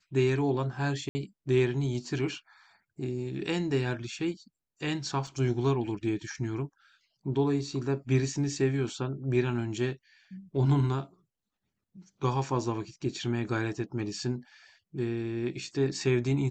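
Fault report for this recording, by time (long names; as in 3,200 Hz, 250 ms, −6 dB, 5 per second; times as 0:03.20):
0:01.09–0:01.15: drop-out 60 ms
0:05.27: drop-out 3.6 ms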